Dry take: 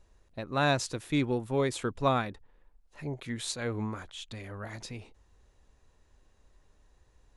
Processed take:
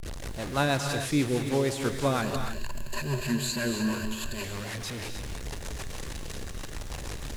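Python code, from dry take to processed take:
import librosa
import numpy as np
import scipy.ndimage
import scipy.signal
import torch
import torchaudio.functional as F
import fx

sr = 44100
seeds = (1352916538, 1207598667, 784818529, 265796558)

y = fx.delta_mod(x, sr, bps=64000, step_db=-31.5)
y = fx.ripple_eq(y, sr, per_octave=1.4, db=14, at=(2.22, 4.44))
y = fx.rotary(y, sr, hz=6.3)
y = fx.notch(y, sr, hz=1300.0, q=27.0)
y = fx.rev_gated(y, sr, seeds[0], gate_ms=330, shape='rising', drr_db=5.5)
y = fx.quant_dither(y, sr, seeds[1], bits=10, dither='none')
y = F.gain(torch.from_numpy(y), 3.0).numpy()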